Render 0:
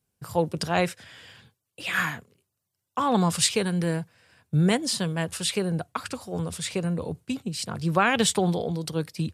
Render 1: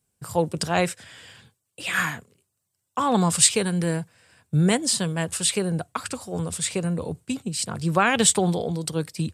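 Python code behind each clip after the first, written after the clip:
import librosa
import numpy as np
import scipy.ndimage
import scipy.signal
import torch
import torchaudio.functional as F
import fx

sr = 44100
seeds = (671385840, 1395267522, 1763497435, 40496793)

y = fx.peak_eq(x, sr, hz=8100.0, db=8.5, octaves=0.43)
y = y * librosa.db_to_amplitude(1.5)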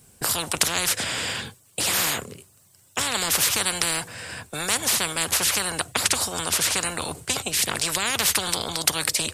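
y = fx.spectral_comp(x, sr, ratio=10.0)
y = y * librosa.db_to_amplitude(1.0)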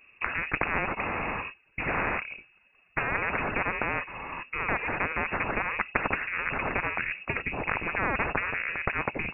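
y = fx.freq_invert(x, sr, carrier_hz=2700)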